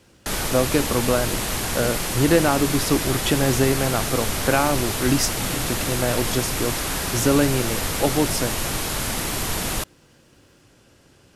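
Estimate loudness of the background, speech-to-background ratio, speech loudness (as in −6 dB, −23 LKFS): −24.5 LKFS, 1.0 dB, −23.5 LKFS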